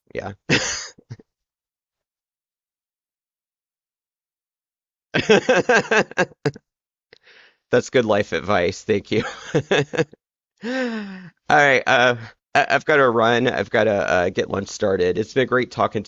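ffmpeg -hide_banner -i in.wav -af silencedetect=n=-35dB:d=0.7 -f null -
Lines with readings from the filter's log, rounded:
silence_start: 1.20
silence_end: 5.14 | silence_duration: 3.94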